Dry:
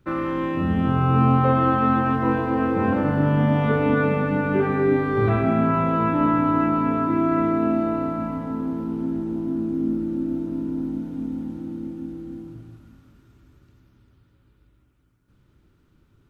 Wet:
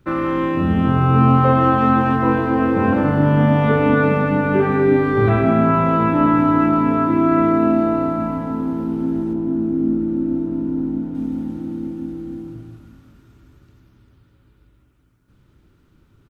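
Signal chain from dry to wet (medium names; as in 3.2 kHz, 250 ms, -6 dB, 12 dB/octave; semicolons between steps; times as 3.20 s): 9.33–11.15 s: treble shelf 3 kHz -11 dB; speakerphone echo 160 ms, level -14 dB; trim +4.5 dB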